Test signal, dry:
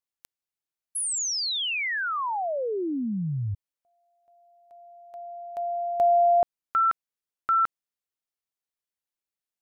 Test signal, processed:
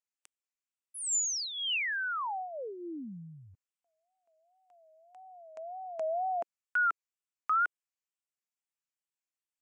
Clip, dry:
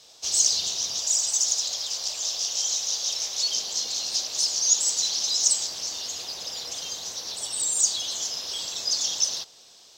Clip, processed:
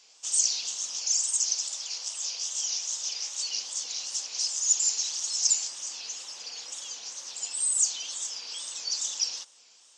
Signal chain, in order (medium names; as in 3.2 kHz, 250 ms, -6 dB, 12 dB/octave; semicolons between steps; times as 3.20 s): cabinet simulation 340–8700 Hz, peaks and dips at 400 Hz -9 dB, 650 Hz -9 dB, 2.6 kHz +4 dB, 3.9 kHz -8 dB, 7.6 kHz +7 dB; wow and flutter 2.1 Hz 150 cents; trim -5 dB